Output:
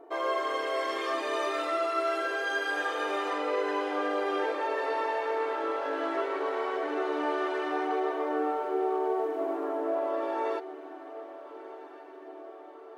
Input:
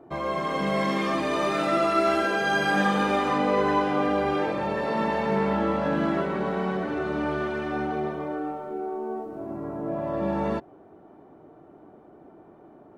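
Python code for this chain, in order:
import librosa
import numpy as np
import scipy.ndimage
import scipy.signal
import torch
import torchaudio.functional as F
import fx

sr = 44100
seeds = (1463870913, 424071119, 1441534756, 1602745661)

y = x + 0.43 * np.pad(x, (int(4.4 * sr / 1000.0), 0))[:len(x)]
y = fx.rider(y, sr, range_db=10, speed_s=0.5)
y = fx.brickwall_highpass(y, sr, low_hz=290.0)
y = fx.echo_diffused(y, sr, ms=1390, feedback_pct=59, wet_db=-15)
y = y * 10.0 ** (-4.0 / 20.0)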